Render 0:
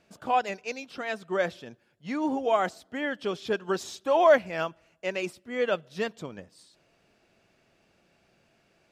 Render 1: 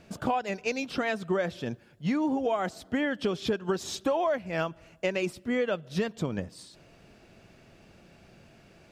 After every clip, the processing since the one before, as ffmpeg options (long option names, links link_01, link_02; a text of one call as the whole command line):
ffmpeg -i in.wav -af "lowshelf=frequency=250:gain=9.5,acompressor=threshold=-32dB:ratio=12,volume=7.5dB" out.wav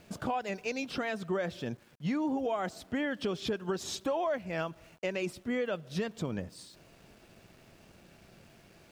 ffmpeg -i in.wav -filter_complex "[0:a]asplit=2[link_01][link_02];[link_02]alimiter=level_in=1.5dB:limit=-24dB:level=0:latency=1:release=75,volume=-1.5dB,volume=2.5dB[link_03];[link_01][link_03]amix=inputs=2:normalize=0,aeval=exprs='val(0)*gte(abs(val(0)),0.00316)':channel_layout=same,volume=-9dB" out.wav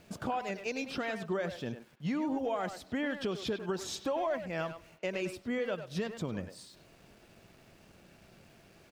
ffmpeg -i in.wav -filter_complex "[0:a]asplit=2[link_01][link_02];[link_02]adelay=100,highpass=300,lowpass=3400,asoftclip=type=hard:threshold=-30dB,volume=-8dB[link_03];[link_01][link_03]amix=inputs=2:normalize=0,volume=-1.5dB" out.wav